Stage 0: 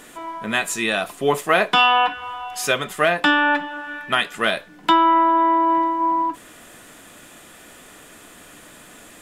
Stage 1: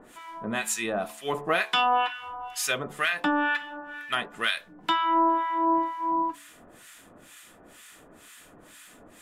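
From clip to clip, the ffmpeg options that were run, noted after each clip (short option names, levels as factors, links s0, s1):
-filter_complex "[0:a]acrossover=split=1200[s0][s1];[s0]aeval=exprs='val(0)*(1-1/2+1/2*cos(2*PI*2.1*n/s))':c=same[s2];[s1]aeval=exprs='val(0)*(1-1/2-1/2*cos(2*PI*2.1*n/s))':c=same[s3];[s2][s3]amix=inputs=2:normalize=0,bandreject=f=72.55:t=h:w=4,bandreject=f=145.1:t=h:w=4,bandreject=f=217.65:t=h:w=4,bandreject=f=290.2:t=h:w=4,bandreject=f=362.75:t=h:w=4,bandreject=f=435.3:t=h:w=4,bandreject=f=507.85:t=h:w=4,bandreject=f=580.4:t=h:w=4,bandreject=f=652.95:t=h:w=4,bandreject=f=725.5:t=h:w=4,bandreject=f=798.05:t=h:w=4,bandreject=f=870.6:t=h:w=4,bandreject=f=943.15:t=h:w=4,bandreject=f=1015.7:t=h:w=4,bandreject=f=1088.25:t=h:w=4,bandreject=f=1160.8:t=h:w=4,volume=0.794"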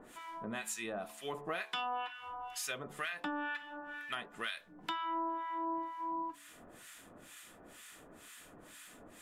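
-af "acompressor=threshold=0.0112:ratio=2,volume=0.631"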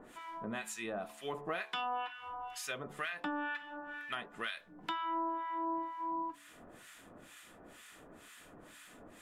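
-af "highshelf=f=4400:g=-6.5,volume=1.12"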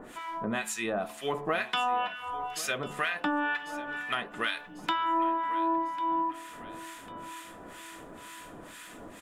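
-af "aecho=1:1:1097|2194|3291|4388:0.141|0.0678|0.0325|0.0156,volume=2.66"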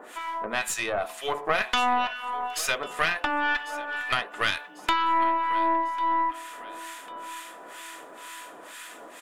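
-af "highpass=500,aeval=exprs='0.2*(cos(1*acos(clip(val(0)/0.2,-1,1)))-cos(1*PI/2))+0.0316*(cos(4*acos(clip(val(0)/0.2,-1,1)))-cos(4*PI/2))':c=same,volume=1.78"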